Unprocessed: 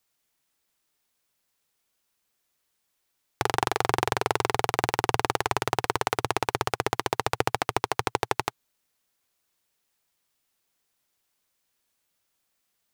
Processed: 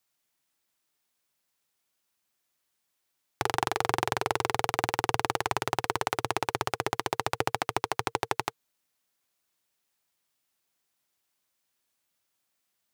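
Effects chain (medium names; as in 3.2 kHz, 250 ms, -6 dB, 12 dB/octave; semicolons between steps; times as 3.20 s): high-pass 78 Hz 6 dB/octave; band-stop 460 Hz, Q 12; trim -2.5 dB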